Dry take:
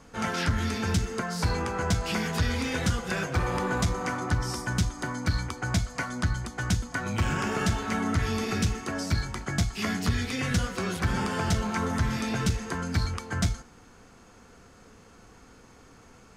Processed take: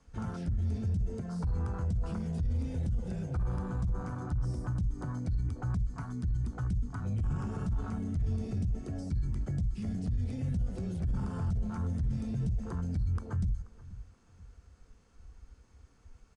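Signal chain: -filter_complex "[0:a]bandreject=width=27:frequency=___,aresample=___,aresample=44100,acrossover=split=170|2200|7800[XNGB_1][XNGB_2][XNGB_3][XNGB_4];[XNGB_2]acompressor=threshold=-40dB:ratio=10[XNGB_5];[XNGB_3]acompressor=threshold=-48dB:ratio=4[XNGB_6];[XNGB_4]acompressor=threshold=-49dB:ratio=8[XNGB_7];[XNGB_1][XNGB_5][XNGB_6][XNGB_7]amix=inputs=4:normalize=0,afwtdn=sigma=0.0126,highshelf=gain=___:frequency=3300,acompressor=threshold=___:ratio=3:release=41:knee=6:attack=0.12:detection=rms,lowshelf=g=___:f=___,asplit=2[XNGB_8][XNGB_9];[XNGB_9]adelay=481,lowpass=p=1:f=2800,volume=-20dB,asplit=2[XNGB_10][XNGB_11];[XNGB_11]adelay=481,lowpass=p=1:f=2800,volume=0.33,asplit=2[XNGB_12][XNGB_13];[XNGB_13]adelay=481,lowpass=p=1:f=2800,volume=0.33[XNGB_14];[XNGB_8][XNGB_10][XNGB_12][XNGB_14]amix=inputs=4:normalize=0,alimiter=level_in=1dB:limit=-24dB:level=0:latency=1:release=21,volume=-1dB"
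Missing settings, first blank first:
6800, 22050, 4, -32dB, 10, 120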